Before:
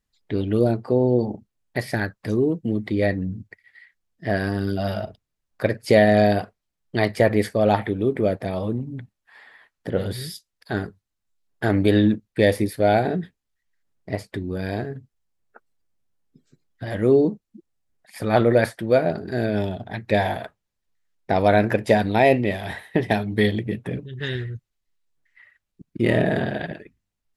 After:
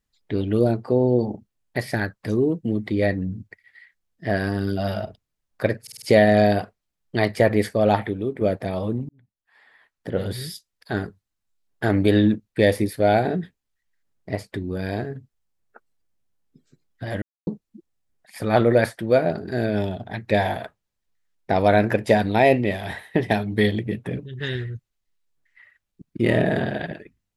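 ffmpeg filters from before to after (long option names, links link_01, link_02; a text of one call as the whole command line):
ffmpeg -i in.wav -filter_complex "[0:a]asplit=9[link_01][link_02][link_03][link_04][link_05][link_06][link_07][link_08][link_09];[link_01]atrim=end=5.872[link_10];[link_02]atrim=start=5.818:end=5.872[link_11];[link_03]atrim=start=5.818:end=5.872[link_12];[link_04]atrim=start=5.818:end=5.872[link_13];[link_05]atrim=start=5.818:end=8.21,asetpts=PTS-STARTPTS,afade=type=out:start_time=1.952:duration=0.44:silence=0.375837[link_14];[link_06]atrim=start=8.21:end=8.89,asetpts=PTS-STARTPTS,afade=type=in:duration=0.004:curve=hsin:silence=0.375837,afade=type=out:start_time=0.676:duration=0.004:curve=hsin[link_15];[link_07]atrim=start=8.89:end=17.02,asetpts=PTS-STARTPTS,afade=type=in:duration=1.24,afade=type=out:start_time=8.126:duration=0.004:curve=hsin[link_16];[link_08]atrim=start=17.02:end=17.27,asetpts=PTS-STARTPTS,volume=0[link_17];[link_09]atrim=start=17.27,asetpts=PTS-STARTPTS,afade=type=in:duration=0.004:curve=hsin[link_18];[link_10][link_11]acrossfade=duration=0.004:curve1=hsin:curve2=hsin[link_19];[link_19][link_12]acrossfade=duration=0.004:curve1=hsin:curve2=hsin[link_20];[link_20][link_13]acrossfade=duration=0.004:curve1=hsin:curve2=hsin[link_21];[link_14][link_15][link_16][link_17][link_18]concat=n=5:v=0:a=1[link_22];[link_21][link_22]acrossfade=duration=0.004:curve1=hsin:curve2=hsin" out.wav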